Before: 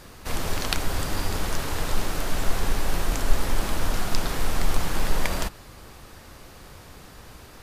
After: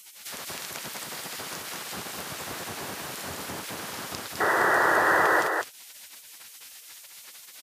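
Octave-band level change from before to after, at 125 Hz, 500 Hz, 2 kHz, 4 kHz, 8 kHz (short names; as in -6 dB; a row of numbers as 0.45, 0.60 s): -15.0, +3.0, +7.5, -3.5, -2.0 dB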